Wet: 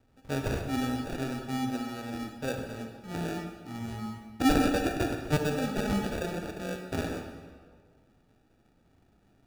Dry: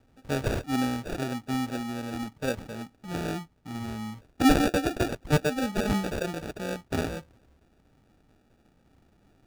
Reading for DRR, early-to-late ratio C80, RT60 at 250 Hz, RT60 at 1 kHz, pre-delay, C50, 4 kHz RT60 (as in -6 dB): 4.0 dB, 6.5 dB, 1.7 s, 1.7 s, 27 ms, 5.0 dB, 1.2 s